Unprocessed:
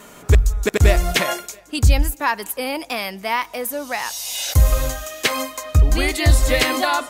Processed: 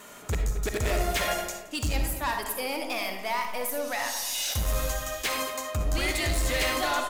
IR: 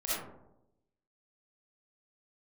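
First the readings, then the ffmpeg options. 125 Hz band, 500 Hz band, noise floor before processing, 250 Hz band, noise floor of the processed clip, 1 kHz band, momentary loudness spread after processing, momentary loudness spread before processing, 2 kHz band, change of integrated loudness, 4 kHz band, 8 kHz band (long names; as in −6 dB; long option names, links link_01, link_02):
−14.0 dB, −7.5 dB, −44 dBFS, −9.0 dB, −43 dBFS, −6.5 dB, 5 LU, 9 LU, −7.0 dB, −9.0 dB, −6.5 dB, −5.5 dB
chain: -filter_complex "[0:a]lowshelf=frequency=470:gain=-6.5,asoftclip=type=tanh:threshold=-20.5dB,asplit=2[link_01][link_02];[link_02]adelay=227.4,volume=-14dB,highshelf=frequency=4000:gain=-5.12[link_03];[link_01][link_03]amix=inputs=2:normalize=0,asplit=2[link_04][link_05];[1:a]atrim=start_sample=2205[link_06];[link_05][link_06]afir=irnorm=-1:irlink=0,volume=-7dB[link_07];[link_04][link_07]amix=inputs=2:normalize=0,volume=-5.5dB"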